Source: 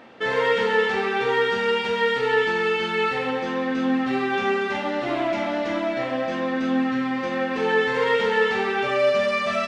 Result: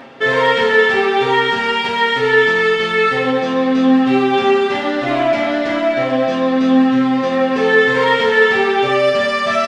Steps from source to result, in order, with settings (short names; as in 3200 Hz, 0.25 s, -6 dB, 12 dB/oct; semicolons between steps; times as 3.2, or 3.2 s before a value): comb 7.4 ms, depth 69%; reverse; upward compressor, threshold -26 dBFS; reverse; gain +6.5 dB